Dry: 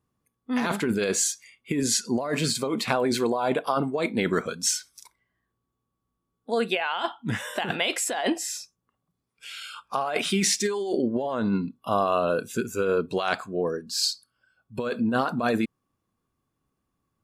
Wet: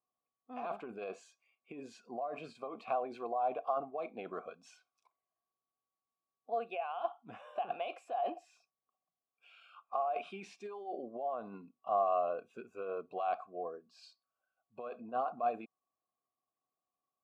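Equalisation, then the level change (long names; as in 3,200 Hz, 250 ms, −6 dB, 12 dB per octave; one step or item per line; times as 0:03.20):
formant filter a
high-shelf EQ 2,000 Hz −11.5 dB
0.0 dB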